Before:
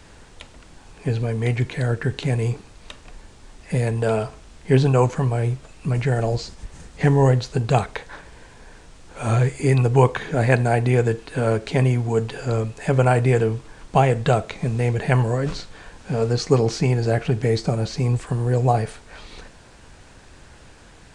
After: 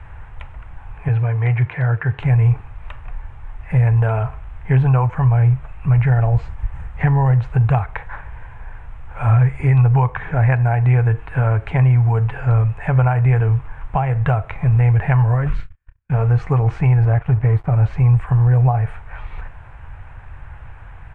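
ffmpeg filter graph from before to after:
ffmpeg -i in.wav -filter_complex "[0:a]asettb=1/sr,asplit=3[link_01][link_02][link_03];[link_01]atrim=end=1.084[link_04];[link_02]atrim=start=1.08:end=2.19,asetpts=PTS-STARTPTS,afade=type=in:duration=0.004:curve=qsin,afade=type=out:start_time=1.106:duration=0.004:curve=qsin,highpass=130,lowpass=5200,equalizer=frequency=220:width_type=o:width=0.31:gain=-12.5[link_05];[link_03]atrim=start=2.186[link_06];[link_04][link_05]acrossfade=duration=0.004:curve1=hsin:curve2=qsin[link_07];[link_07][link_06]acrossfade=duration=0.004:curve1=qsin:curve2=hsin,asettb=1/sr,asplit=3[link_08][link_09][link_10];[link_08]atrim=end=15.484[link_11];[link_09]atrim=start=15.48:end=16.12,asetpts=PTS-STARTPTS,afade=type=in:duration=0.004:curve=qsin,afade=type=out:start_time=0.636:duration=0.004:curve=qsin,agate=range=-44dB:threshold=-36dB:ratio=16:release=100:detection=peak,equalizer=frequency=770:width=1.3:gain=-14.5,asplit=2[link_12][link_13];[link_13]adelay=28,volume=-10.5dB[link_14];[link_12][link_14]amix=inputs=2:normalize=0,atrim=end_sample=28224[link_15];[link_10]atrim=start=16.116[link_16];[link_11][link_15]acrossfade=duration=0.004:curve1=hsin:curve2=qsin[link_17];[link_17][link_16]acrossfade=duration=0.004:curve1=qsin:curve2=hsin,asettb=1/sr,asplit=3[link_18][link_19][link_20];[link_18]atrim=end=17.054[link_21];[link_19]atrim=start=17.05:end=17.73,asetpts=PTS-STARTPTS,afade=type=in:duration=0.004:curve=qsin,afade=type=out:start_time=0.676:duration=0.004:curve=qsin,highshelf=frequency=2200:gain=-9.5,aeval=exprs='sgn(val(0))*max(abs(val(0))-0.0126,0)':channel_layout=same[link_22];[link_20]atrim=start=17.726[link_23];[link_21][link_22]acrossfade=duration=0.004:curve1=hsin:curve2=qsin[link_24];[link_24][link_23]acrossfade=duration=0.004:curve1=qsin:curve2=hsin,firequalizer=gain_entry='entry(110,0);entry(200,-16);entry(820,6);entry(2400,2);entry(4500,-20);entry(8600,-10)':delay=0.05:min_phase=1,acompressor=threshold=-22dB:ratio=3,bass=frequency=250:gain=12,treble=frequency=4000:gain=-11,volume=1.5dB" out.wav

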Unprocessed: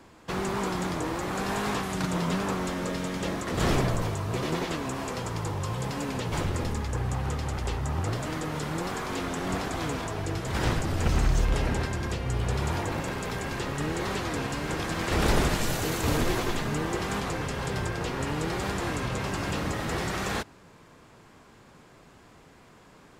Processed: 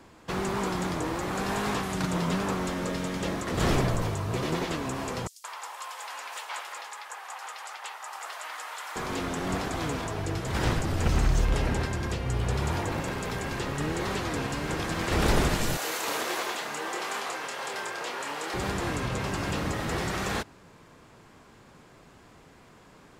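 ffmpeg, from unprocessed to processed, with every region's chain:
ffmpeg -i in.wav -filter_complex "[0:a]asettb=1/sr,asplit=3[link_01][link_02][link_03];[link_01]atrim=end=5.274[link_04];[link_02]atrim=start=5.27:end=8.96,asetpts=PTS-STARTPTS,afade=type=in:duration=0.004:curve=qsin,afade=type=out:start_time=3.686:duration=0.004:curve=qsin,highpass=frequency=800:width=0.5412,highpass=frequency=800:width=1.3066,acrossover=split=5300[link_05][link_06];[link_05]adelay=170[link_07];[link_07][link_06]amix=inputs=2:normalize=0,atrim=end_sample=162729[link_08];[link_03]atrim=start=8.956[link_09];[link_04][link_08]acrossfade=duration=0.004:curve1=hsin:curve2=qsin[link_10];[link_10][link_09]acrossfade=duration=0.004:curve1=qsin:curve2=hsin,asettb=1/sr,asplit=3[link_11][link_12][link_13];[link_11]atrim=end=15.774[link_14];[link_12]atrim=start=15.77:end=18.54,asetpts=PTS-STARTPTS,afade=type=in:duration=0.004:curve=qsin,afade=type=out:start_time=2.766:duration=0.004:curve=qsin,highpass=580,asplit=2[link_15][link_16];[link_16]adelay=28,volume=-5.5dB[link_17];[link_15][link_17]amix=inputs=2:normalize=0,atrim=end_sample=122157[link_18];[link_13]atrim=start=18.536[link_19];[link_14][link_18]acrossfade=duration=0.004:curve1=hsin:curve2=qsin[link_20];[link_20][link_19]acrossfade=duration=0.004:curve1=qsin:curve2=hsin" out.wav

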